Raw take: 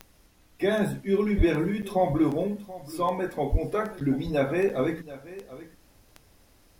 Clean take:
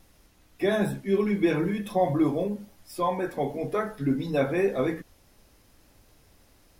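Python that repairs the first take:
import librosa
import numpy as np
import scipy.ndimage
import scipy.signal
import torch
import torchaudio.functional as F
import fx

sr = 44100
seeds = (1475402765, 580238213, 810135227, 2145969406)

y = fx.fix_declick_ar(x, sr, threshold=10.0)
y = fx.highpass(y, sr, hz=140.0, slope=24, at=(1.37, 1.49), fade=0.02)
y = fx.highpass(y, sr, hz=140.0, slope=24, at=(3.51, 3.63), fade=0.02)
y = fx.fix_interpolate(y, sr, at_s=(1.82, 4.0, 4.69), length_ms=7.5)
y = fx.fix_echo_inverse(y, sr, delay_ms=731, level_db=-17.0)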